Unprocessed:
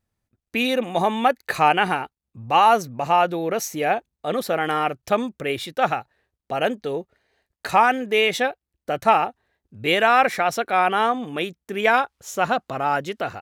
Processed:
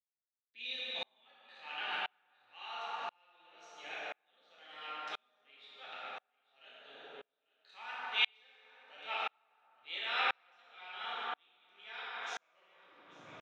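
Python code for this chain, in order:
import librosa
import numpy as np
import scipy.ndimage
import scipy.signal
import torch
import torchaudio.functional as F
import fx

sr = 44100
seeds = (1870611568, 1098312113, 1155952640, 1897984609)

y = fx.tape_stop_end(x, sr, length_s=1.13)
y = scipy.signal.sosfilt(scipy.signal.butter(2, 130.0, 'highpass', fs=sr, output='sos'), y)
y = fx.peak_eq(y, sr, hz=220.0, db=2.5, octaves=2.2)
y = fx.transient(y, sr, attack_db=-6, sustain_db=-10)
y = fx.ladder_lowpass(y, sr, hz=4000.0, resonance_pct=60)
y = np.diff(y, prepend=0.0)
y = fx.echo_feedback(y, sr, ms=845, feedback_pct=41, wet_db=-15.0)
y = fx.rev_plate(y, sr, seeds[0], rt60_s=2.6, hf_ratio=0.45, predelay_ms=0, drr_db=-7.0)
y = fx.tremolo_decay(y, sr, direction='swelling', hz=0.97, depth_db=39)
y = F.gain(torch.from_numpy(y), 5.0).numpy()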